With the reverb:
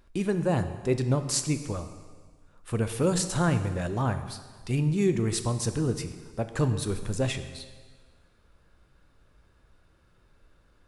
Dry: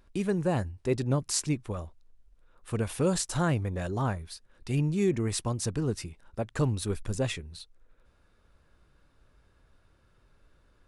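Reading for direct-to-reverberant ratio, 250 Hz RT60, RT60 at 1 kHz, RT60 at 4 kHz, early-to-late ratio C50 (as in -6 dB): 8.5 dB, 1.7 s, 1.5 s, 1.5 s, 10.5 dB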